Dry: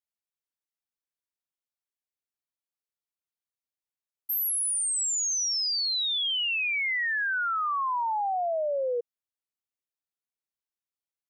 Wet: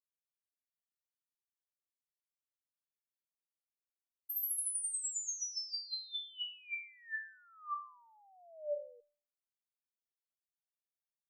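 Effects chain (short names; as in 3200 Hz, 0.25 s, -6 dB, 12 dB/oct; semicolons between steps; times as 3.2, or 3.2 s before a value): high shelf 5700 Hz +11.5 dB; resonator 590 Hz, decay 0.43 s, mix 100%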